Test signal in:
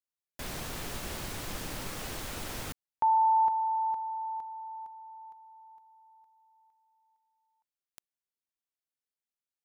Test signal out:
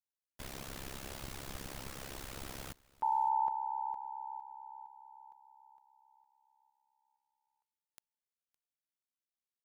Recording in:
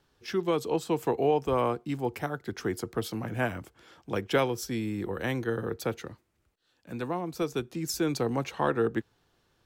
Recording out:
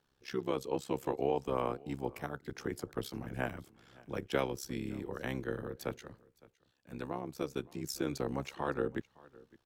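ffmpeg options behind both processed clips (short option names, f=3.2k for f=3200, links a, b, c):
-af "tremolo=f=67:d=0.889,aecho=1:1:562:0.0708,volume=-3.5dB"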